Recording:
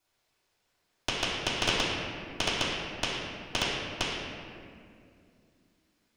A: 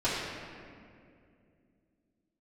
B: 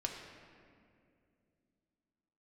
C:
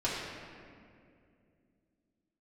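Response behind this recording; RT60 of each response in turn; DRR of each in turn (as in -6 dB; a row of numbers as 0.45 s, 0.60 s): A; 2.4 s, 2.4 s, 2.4 s; -14.0 dB, 0.5 dB, -9.5 dB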